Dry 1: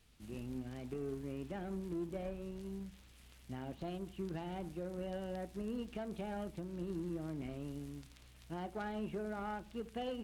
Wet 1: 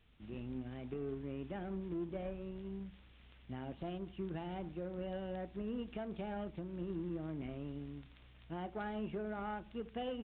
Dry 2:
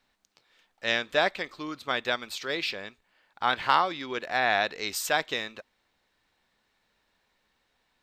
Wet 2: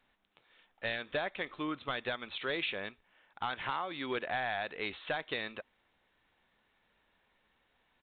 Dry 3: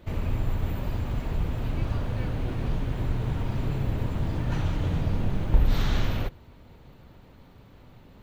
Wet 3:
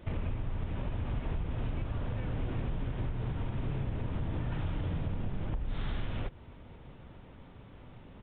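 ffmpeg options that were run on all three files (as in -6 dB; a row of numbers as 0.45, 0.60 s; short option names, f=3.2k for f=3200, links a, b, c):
-af "acompressor=threshold=-29dB:ratio=12,aresample=8000,asoftclip=type=hard:threshold=-26.5dB,aresample=44100"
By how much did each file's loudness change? 0.0, -9.0, -7.5 LU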